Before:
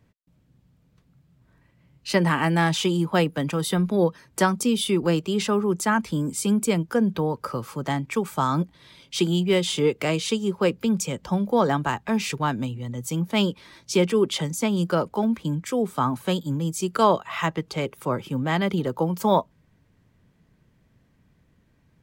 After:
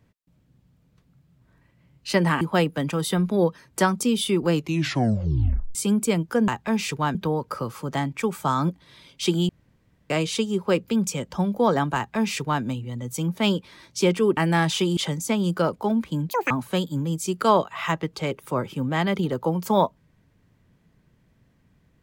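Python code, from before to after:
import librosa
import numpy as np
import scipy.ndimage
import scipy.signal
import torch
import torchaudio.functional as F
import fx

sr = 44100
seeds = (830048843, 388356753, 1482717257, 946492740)

y = fx.edit(x, sr, fx.move(start_s=2.41, length_s=0.6, to_s=14.3),
    fx.tape_stop(start_s=5.13, length_s=1.22),
    fx.room_tone_fill(start_s=9.42, length_s=0.61),
    fx.duplicate(start_s=11.89, length_s=0.67, to_s=7.08),
    fx.speed_span(start_s=15.62, length_s=0.43, speed=1.99), tone=tone)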